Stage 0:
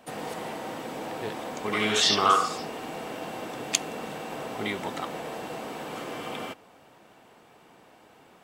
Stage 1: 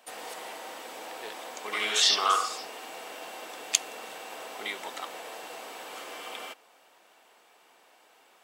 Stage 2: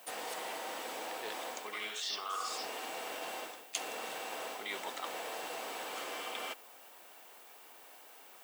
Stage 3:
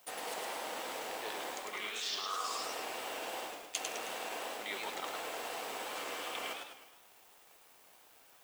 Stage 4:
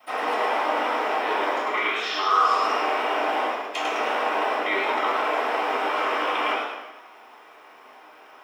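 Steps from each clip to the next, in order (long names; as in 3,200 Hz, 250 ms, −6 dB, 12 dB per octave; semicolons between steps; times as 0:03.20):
high-pass filter 470 Hz 12 dB per octave; high-shelf EQ 2,100 Hz +7.5 dB; level −5.5 dB
reversed playback; downward compressor 8 to 1, threshold −38 dBFS, peak gain reduction 20.5 dB; reversed playback; background noise violet −60 dBFS; level +1.5 dB
dead-zone distortion −56.5 dBFS; feedback echo with a swinging delay time 105 ms, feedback 49%, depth 177 cents, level −4 dB
convolution reverb RT60 0.60 s, pre-delay 3 ms, DRR −15.5 dB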